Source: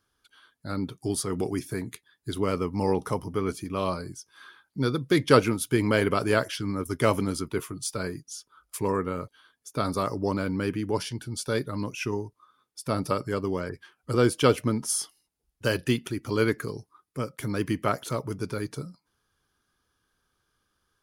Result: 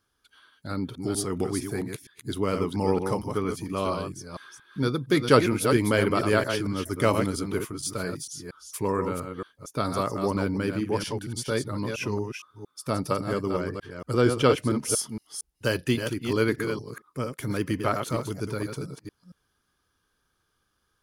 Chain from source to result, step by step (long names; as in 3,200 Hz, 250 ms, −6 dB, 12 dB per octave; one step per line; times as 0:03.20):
delay that plays each chunk backwards 230 ms, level −6 dB
0:14.21–0:14.70: high-shelf EQ 7,600 Hz −7.5 dB